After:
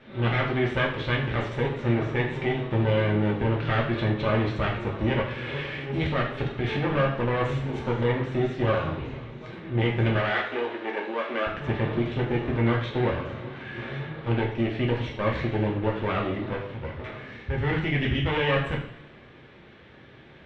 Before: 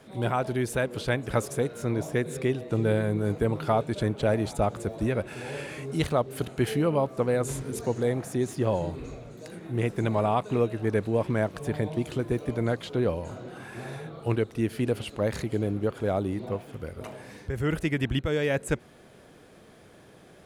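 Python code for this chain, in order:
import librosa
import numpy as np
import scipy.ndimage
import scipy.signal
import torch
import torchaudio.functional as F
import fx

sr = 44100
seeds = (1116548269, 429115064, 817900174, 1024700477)

y = fx.lower_of_two(x, sr, delay_ms=0.53)
y = fx.ladder_lowpass(y, sr, hz=3500.0, resonance_pct=40)
y = fx.over_compress(y, sr, threshold_db=-34.0, ratio=-1.0)
y = fx.bessel_highpass(y, sr, hz=420.0, order=6, at=(10.17, 11.47))
y = fx.rev_double_slope(y, sr, seeds[0], early_s=0.54, late_s=1.6, knee_db=-18, drr_db=-2.5)
y = F.gain(torch.from_numpy(y), 7.0).numpy()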